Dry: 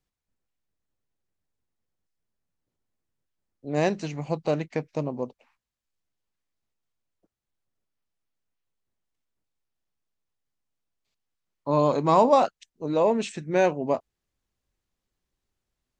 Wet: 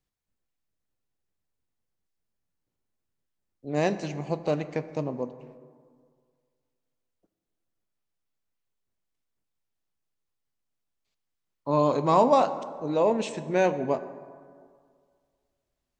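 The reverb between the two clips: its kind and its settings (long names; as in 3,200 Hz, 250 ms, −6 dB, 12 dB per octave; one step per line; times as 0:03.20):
dense smooth reverb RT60 2 s, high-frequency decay 0.45×, DRR 11.5 dB
level −1.5 dB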